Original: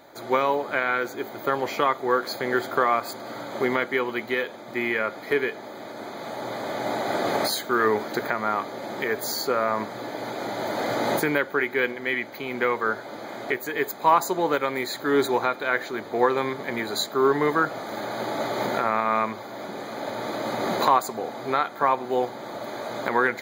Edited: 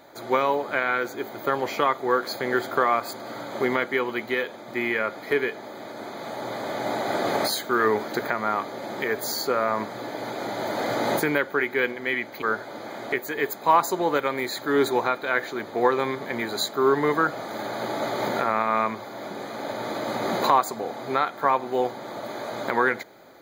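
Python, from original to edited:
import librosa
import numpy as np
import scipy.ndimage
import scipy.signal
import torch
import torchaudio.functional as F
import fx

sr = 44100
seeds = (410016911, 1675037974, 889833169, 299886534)

y = fx.edit(x, sr, fx.cut(start_s=12.42, length_s=0.38), tone=tone)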